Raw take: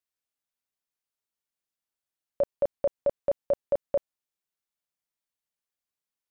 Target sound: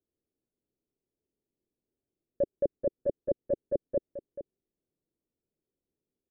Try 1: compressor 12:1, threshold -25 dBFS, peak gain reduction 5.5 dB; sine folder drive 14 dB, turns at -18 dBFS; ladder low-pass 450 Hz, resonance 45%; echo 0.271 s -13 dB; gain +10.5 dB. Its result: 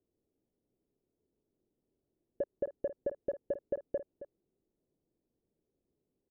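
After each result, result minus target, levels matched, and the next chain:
sine folder: distortion +13 dB; echo 0.161 s early
compressor 12:1, threshold -25 dBFS, peak gain reduction 5.5 dB; sine folder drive 7 dB, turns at -18 dBFS; ladder low-pass 450 Hz, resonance 45%; echo 0.271 s -13 dB; gain +10.5 dB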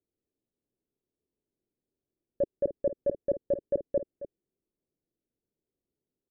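echo 0.161 s early
compressor 12:1, threshold -25 dBFS, peak gain reduction 5.5 dB; sine folder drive 7 dB, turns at -18 dBFS; ladder low-pass 450 Hz, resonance 45%; echo 0.432 s -13 dB; gain +10.5 dB

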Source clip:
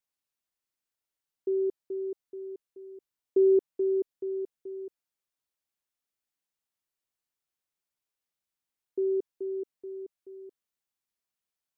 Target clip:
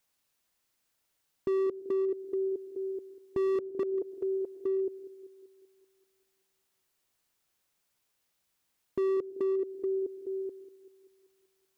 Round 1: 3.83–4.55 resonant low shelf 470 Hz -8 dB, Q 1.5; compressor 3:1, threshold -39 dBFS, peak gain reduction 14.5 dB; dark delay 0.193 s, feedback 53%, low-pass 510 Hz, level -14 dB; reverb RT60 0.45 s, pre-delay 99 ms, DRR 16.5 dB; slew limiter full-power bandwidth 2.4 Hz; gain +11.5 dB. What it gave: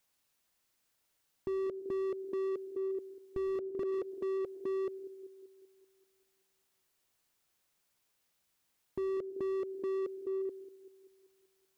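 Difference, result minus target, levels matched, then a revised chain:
slew limiter: distortion +9 dB
3.83–4.55 resonant low shelf 470 Hz -8 dB, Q 1.5; compressor 3:1, threshold -39 dBFS, peak gain reduction 14.5 dB; dark delay 0.193 s, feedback 53%, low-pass 510 Hz, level -14 dB; reverb RT60 0.45 s, pre-delay 99 ms, DRR 16.5 dB; slew limiter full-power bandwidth 5 Hz; gain +11.5 dB

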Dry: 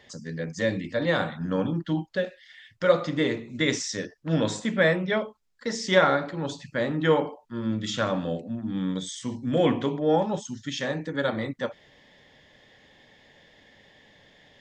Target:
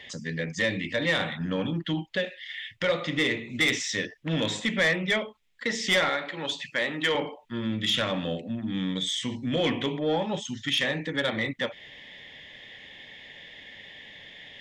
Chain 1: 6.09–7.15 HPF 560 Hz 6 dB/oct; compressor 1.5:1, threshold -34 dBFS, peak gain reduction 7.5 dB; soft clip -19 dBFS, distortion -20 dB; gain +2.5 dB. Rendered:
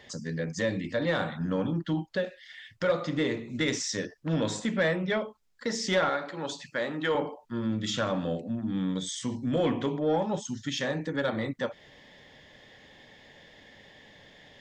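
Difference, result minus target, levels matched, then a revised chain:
2000 Hz band -4.0 dB
6.09–7.15 HPF 560 Hz 6 dB/oct; compressor 1.5:1, threshold -34 dBFS, peak gain reduction 7.5 dB; band shelf 2600 Hz +11 dB 1.2 oct; soft clip -19 dBFS, distortion -14 dB; gain +2.5 dB

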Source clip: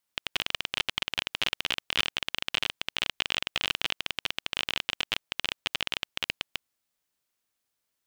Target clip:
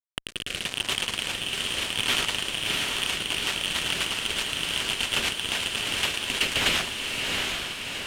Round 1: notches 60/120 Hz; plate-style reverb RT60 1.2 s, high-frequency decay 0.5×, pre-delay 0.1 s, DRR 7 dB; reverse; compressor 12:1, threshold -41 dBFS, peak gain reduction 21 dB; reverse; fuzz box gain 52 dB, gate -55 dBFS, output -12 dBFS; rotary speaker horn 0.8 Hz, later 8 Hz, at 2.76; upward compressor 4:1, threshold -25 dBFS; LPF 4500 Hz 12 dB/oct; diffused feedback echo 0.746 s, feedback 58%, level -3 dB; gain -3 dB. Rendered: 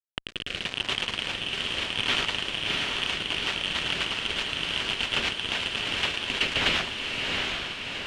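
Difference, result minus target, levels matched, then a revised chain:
8000 Hz band -8.5 dB
notches 60/120 Hz; plate-style reverb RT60 1.2 s, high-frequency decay 0.5×, pre-delay 0.1 s, DRR 7 dB; reverse; compressor 12:1, threshold -41 dBFS, peak gain reduction 21 dB; reverse; fuzz box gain 52 dB, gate -55 dBFS, output -12 dBFS; rotary speaker horn 0.8 Hz, later 8 Hz, at 2.76; upward compressor 4:1, threshold -25 dBFS; LPF 13000 Hz 12 dB/oct; diffused feedback echo 0.746 s, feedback 58%, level -3 dB; gain -3 dB

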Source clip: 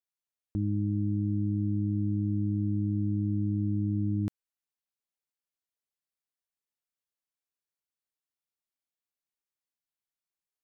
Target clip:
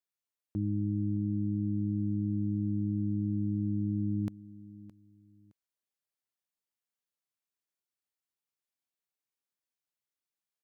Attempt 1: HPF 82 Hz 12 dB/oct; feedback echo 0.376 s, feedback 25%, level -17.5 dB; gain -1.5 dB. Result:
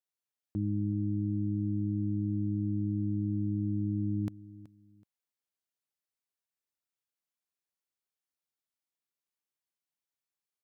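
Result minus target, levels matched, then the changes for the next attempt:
echo 0.24 s early
change: feedback echo 0.616 s, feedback 25%, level -17.5 dB

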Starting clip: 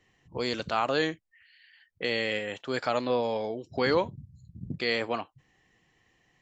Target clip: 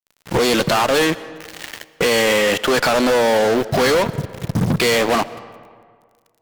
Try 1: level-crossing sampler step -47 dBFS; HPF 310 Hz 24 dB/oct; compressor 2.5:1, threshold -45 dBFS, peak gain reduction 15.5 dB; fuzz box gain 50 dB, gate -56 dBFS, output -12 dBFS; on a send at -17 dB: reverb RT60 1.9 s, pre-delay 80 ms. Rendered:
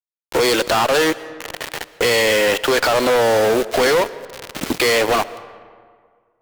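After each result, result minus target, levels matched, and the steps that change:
125 Hz band -9.5 dB; level-crossing sampler: distortion +12 dB
change: HPF 110 Hz 24 dB/oct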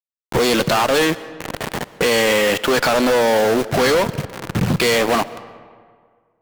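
level-crossing sampler: distortion +12 dB
change: level-crossing sampler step -58.5 dBFS

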